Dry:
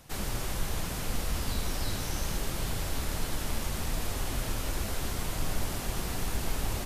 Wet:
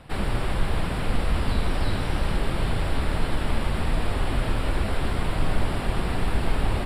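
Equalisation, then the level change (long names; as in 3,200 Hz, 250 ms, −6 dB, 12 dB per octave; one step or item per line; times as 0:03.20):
moving average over 7 samples
+8.5 dB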